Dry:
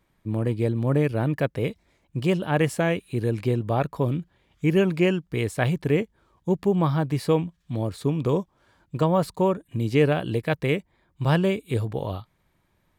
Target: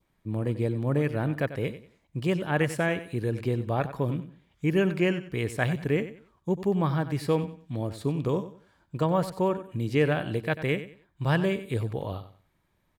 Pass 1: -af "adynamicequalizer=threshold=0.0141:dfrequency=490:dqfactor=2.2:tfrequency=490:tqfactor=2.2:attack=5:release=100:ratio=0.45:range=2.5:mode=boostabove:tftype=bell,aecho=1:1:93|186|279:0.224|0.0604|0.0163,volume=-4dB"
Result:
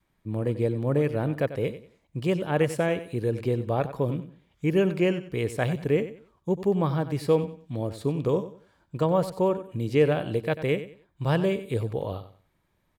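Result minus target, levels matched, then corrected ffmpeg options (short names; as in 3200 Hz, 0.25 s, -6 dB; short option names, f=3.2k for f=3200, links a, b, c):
2000 Hz band -4.5 dB
-af "adynamicequalizer=threshold=0.0141:dfrequency=1700:dqfactor=2.2:tfrequency=1700:tqfactor=2.2:attack=5:release=100:ratio=0.45:range=2.5:mode=boostabove:tftype=bell,aecho=1:1:93|186|279:0.224|0.0604|0.0163,volume=-4dB"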